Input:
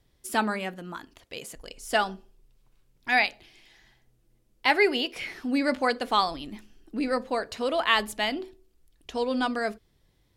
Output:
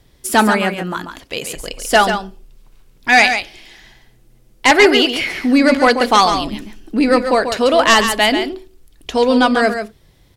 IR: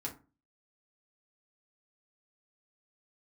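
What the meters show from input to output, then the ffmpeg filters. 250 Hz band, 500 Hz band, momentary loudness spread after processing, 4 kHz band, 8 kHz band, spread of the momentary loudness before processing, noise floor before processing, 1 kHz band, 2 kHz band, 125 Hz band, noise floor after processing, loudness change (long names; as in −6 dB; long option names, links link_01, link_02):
+14.5 dB, +14.0 dB, 15 LU, +13.0 dB, +18.0 dB, 18 LU, −67 dBFS, +13.0 dB, +12.5 dB, +15.0 dB, −52 dBFS, +13.0 dB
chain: -filter_complex "[0:a]aeval=exprs='0.473*sin(PI/2*2.51*val(0)/0.473)':channel_layout=same,asplit=2[link_01][link_02];[link_02]aecho=0:1:139:0.398[link_03];[link_01][link_03]amix=inputs=2:normalize=0,volume=2.5dB"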